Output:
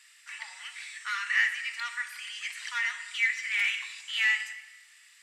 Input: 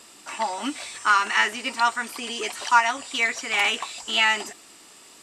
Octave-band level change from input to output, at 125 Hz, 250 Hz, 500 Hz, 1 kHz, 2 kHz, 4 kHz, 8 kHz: can't be measured, below −40 dB, below −35 dB, −19.5 dB, −3.5 dB, −8.5 dB, −10.5 dB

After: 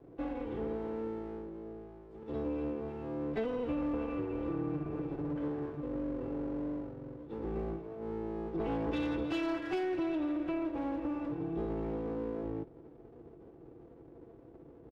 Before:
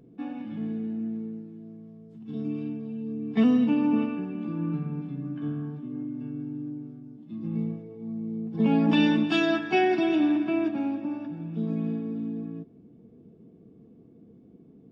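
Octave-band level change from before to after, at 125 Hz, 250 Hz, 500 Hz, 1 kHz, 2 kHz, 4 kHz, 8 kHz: −9.0 dB, −10.0 dB, −3.5 dB, −8.0 dB, −12.5 dB, −15.0 dB, can't be measured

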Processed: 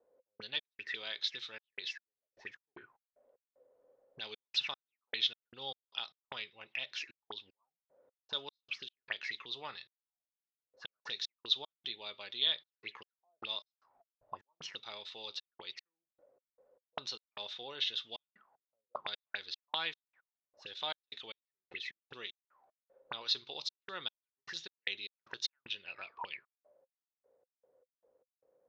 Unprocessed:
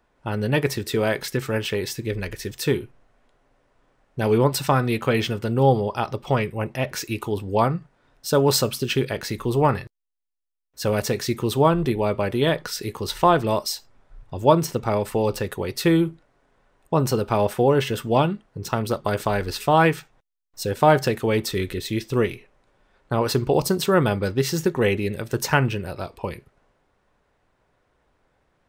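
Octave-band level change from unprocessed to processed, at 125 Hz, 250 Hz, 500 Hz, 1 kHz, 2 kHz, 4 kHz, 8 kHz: below −40 dB, −38.0 dB, −31.5 dB, −25.0 dB, −14.5 dB, −4.5 dB, −24.0 dB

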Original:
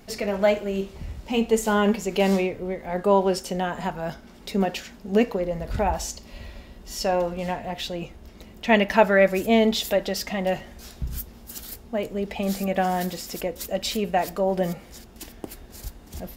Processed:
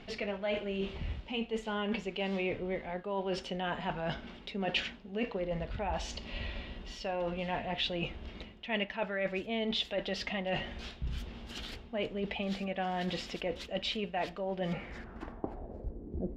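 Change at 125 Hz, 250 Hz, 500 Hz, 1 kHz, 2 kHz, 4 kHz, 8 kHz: −8.5, −12.0, −12.5, −12.0, −9.0, −4.5, −18.5 decibels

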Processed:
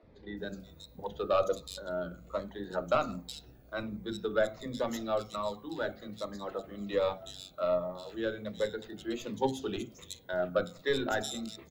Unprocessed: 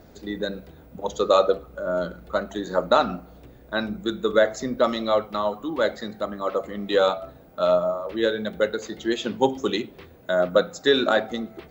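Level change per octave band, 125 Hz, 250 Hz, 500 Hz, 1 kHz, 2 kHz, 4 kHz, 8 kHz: −6.0, −10.0, −10.5, −10.5, −10.5, −11.5, −4.5 decibels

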